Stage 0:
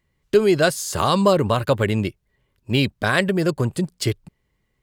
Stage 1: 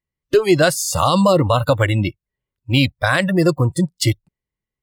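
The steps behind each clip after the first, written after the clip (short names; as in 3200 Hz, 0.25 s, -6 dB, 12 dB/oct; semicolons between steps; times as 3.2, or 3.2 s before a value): spectral noise reduction 23 dB; maximiser +9.5 dB; gain -3.5 dB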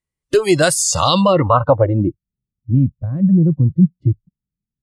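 low-pass sweep 9500 Hz -> 200 Hz, 0.78–2.27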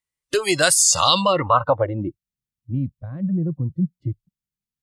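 tilt shelf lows -6.5 dB, about 690 Hz; gain -4.5 dB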